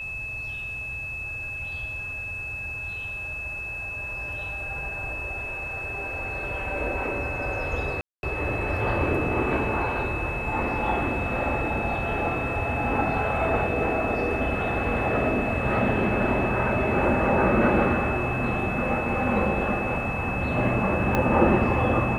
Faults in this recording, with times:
tone 2600 Hz -31 dBFS
8.01–8.23 gap 0.221 s
21.15 pop -10 dBFS

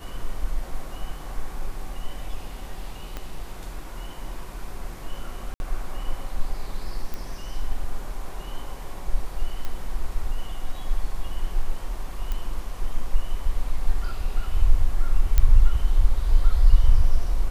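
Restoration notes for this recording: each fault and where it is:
3.17 pop -18 dBFS
5.54–5.6 gap 61 ms
7.14 pop
9.65 pop -17 dBFS
12.32 pop -16 dBFS
15.38 pop -6 dBFS

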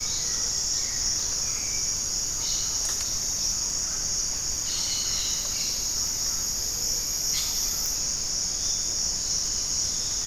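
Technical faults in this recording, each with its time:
crackle 60/s -33 dBFS
7.86 pop

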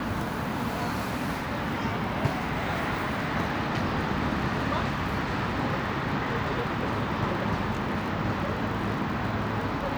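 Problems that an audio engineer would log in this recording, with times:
crackle 32/s -36 dBFS

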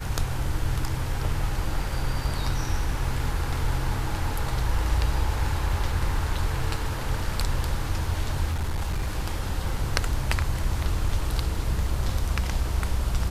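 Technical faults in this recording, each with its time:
8.5–9.17 clipped -23 dBFS

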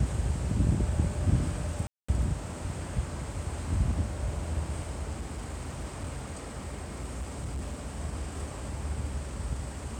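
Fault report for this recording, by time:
1.87–2.08 gap 0.215 s
5.16–7.96 clipped -30.5 dBFS

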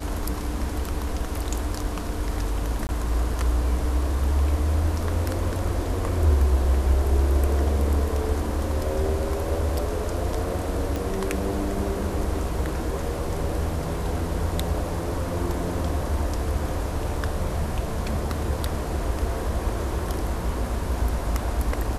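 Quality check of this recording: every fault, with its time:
2.87–2.89 gap 19 ms
10.96 pop

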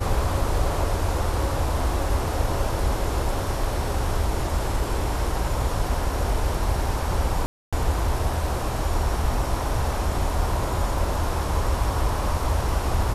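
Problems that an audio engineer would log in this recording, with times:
7.46–7.73 gap 0.266 s

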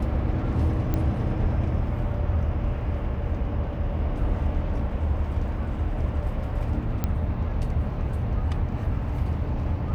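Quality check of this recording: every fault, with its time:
0.94 pop -14 dBFS
7.04 pop -13 dBFS

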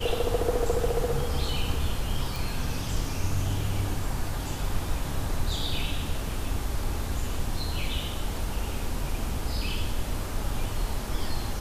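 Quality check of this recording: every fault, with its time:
2.36 pop

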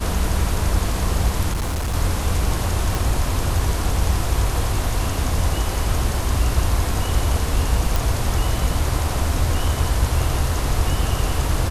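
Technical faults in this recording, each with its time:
1.52–1.95 clipped -19.5 dBFS
2.95 pop
7.96 pop

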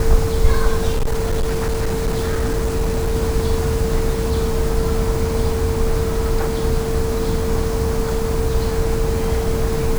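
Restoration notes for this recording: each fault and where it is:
tone 450 Hz -22 dBFS
0.91–3.16 clipped -14.5 dBFS

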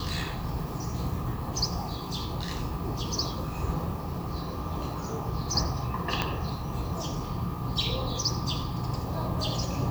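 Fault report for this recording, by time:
6.22 pop -11 dBFS

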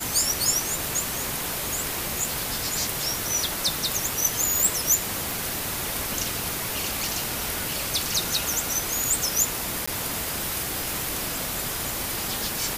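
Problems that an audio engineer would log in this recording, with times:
5.31 pop
9.86–9.88 gap 15 ms

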